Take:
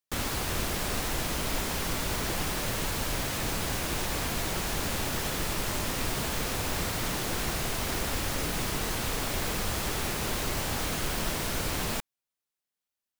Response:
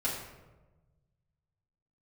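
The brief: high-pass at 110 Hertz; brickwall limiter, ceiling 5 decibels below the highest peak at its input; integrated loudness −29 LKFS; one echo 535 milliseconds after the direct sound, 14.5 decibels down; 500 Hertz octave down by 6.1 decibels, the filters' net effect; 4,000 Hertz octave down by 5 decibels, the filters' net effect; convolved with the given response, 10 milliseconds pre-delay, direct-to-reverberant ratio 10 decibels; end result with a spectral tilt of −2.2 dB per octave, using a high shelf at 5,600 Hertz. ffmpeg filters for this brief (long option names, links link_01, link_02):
-filter_complex "[0:a]highpass=110,equalizer=frequency=500:width_type=o:gain=-8,equalizer=frequency=4000:width_type=o:gain=-8.5,highshelf=frequency=5600:gain=4.5,alimiter=limit=-24dB:level=0:latency=1,aecho=1:1:535:0.188,asplit=2[link_01][link_02];[1:a]atrim=start_sample=2205,adelay=10[link_03];[link_02][link_03]afir=irnorm=-1:irlink=0,volume=-16dB[link_04];[link_01][link_04]amix=inputs=2:normalize=0,volume=2.5dB"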